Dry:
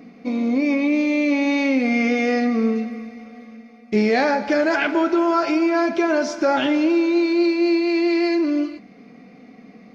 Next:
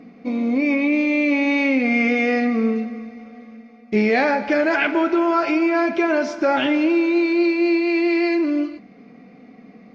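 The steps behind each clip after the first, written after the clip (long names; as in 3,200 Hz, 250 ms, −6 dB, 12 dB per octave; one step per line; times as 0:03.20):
low-pass filter 3,100 Hz 6 dB per octave
dynamic equaliser 2,400 Hz, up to +6 dB, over −40 dBFS, Q 1.6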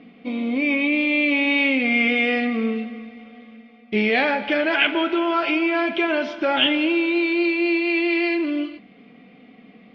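low-pass with resonance 3,200 Hz, resonance Q 6.5
level −3.5 dB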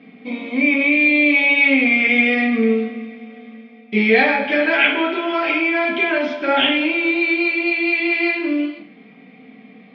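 convolution reverb RT60 0.50 s, pre-delay 3 ms, DRR −3 dB
level −4.5 dB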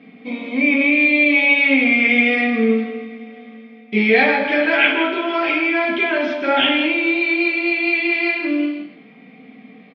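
single-tap delay 160 ms −10 dB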